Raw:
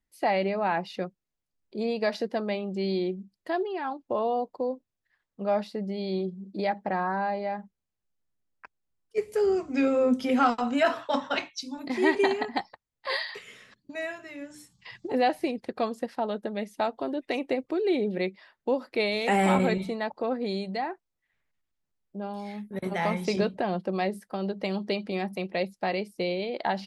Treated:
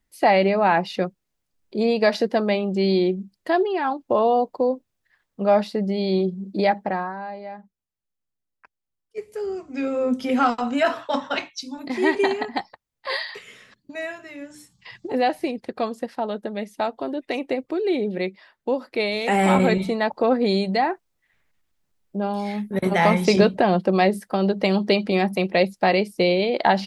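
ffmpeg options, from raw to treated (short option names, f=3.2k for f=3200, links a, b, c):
-af "volume=23dB,afade=t=out:st=6.67:d=0.47:silence=0.223872,afade=t=in:st=9.64:d=0.72:silence=0.421697,afade=t=in:st=19.3:d=1.03:silence=0.446684"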